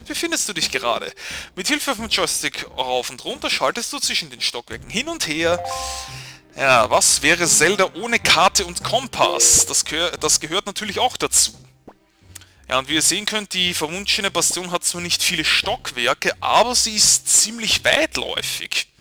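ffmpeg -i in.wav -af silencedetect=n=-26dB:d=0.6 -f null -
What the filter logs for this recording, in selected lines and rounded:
silence_start: 11.49
silence_end: 12.35 | silence_duration: 0.86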